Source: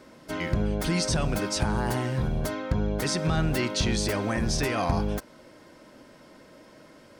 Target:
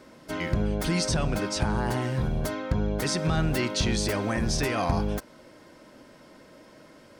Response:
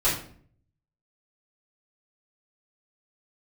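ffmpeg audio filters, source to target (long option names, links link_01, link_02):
-filter_complex "[0:a]asettb=1/sr,asplit=3[link_01][link_02][link_03];[link_01]atrim=end=1.114[link_04];[link_02]atrim=start=1.11:end=2.02,asetpts=PTS-STARTPTS,afade=type=in:duration=0.004:curve=qsin,afade=type=out:start_time=0.906:duration=0.004:curve=qsin,highshelf=frequency=9400:gain=-8[link_05];[link_03]atrim=start=2.016[link_06];[link_04][link_05]acrossfade=duration=0.004:curve1=hsin:curve2=qsin[link_07];[link_07][link_06]acrossfade=duration=0.004:curve1=qsin:curve2=hsin"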